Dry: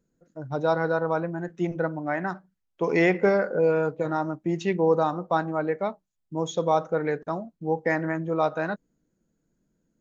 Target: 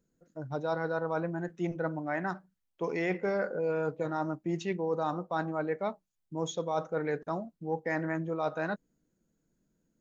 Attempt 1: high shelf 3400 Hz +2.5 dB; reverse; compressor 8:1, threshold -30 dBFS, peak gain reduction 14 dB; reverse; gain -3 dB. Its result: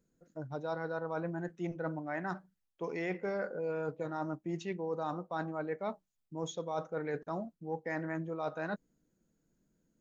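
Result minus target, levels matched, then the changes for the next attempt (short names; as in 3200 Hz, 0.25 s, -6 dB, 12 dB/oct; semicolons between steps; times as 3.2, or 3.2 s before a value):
compressor: peak gain reduction +5 dB
change: compressor 8:1, threshold -24 dBFS, peak gain reduction 9 dB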